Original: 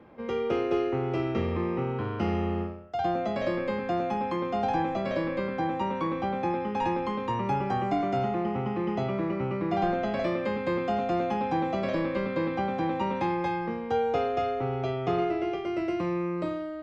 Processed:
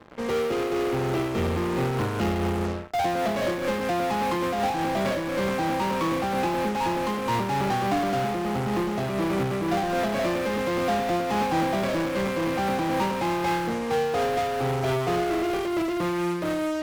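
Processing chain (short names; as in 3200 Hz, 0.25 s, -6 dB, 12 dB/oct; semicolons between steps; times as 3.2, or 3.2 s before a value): in parallel at -11 dB: fuzz box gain 46 dB, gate -48 dBFS; on the sum: noise-modulated level, depth 55%; gain -2 dB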